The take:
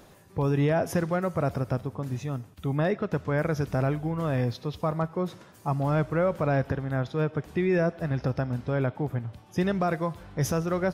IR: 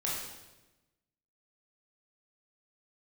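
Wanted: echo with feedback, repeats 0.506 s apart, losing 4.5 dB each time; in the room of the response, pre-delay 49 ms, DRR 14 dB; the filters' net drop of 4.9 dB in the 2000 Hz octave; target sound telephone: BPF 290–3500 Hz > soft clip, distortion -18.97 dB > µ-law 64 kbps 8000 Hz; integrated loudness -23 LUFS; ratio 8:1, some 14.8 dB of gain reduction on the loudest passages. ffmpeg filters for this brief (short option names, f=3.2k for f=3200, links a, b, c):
-filter_complex "[0:a]equalizer=f=2k:t=o:g=-6.5,acompressor=threshold=-37dB:ratio=8,aecho=1:1:506|1012|1518|2024|2530|3036|3542|4048|4554:0.596|0.357|0.214|0.129|0.0772|0.0463|0.0278|0.0167|0.01,asplit=2[a][b];[1:a]atrim=start_sample=2205,adelay=49[c];[b][c]afir=irnorm=-1:irlink=0,volume=-19dB[d];[a][d]amix=inputs=2:normalize=0,highpass=290,lowpass=3.5k,asoftclip=threshold=-33dB,volume=21.5dB" -ar 8000 -c:a pcm_mulaw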